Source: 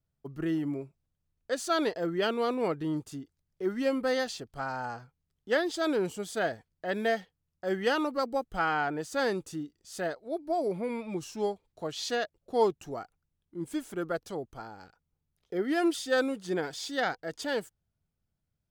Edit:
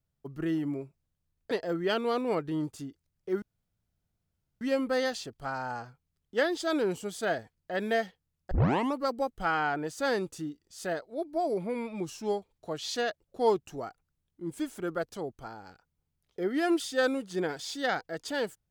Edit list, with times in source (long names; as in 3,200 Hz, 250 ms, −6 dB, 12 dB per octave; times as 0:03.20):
0:01.51–0:01.84: remove
0:03.75: splice in room tone 1.19 s
0:07.65: tape start 0.42 s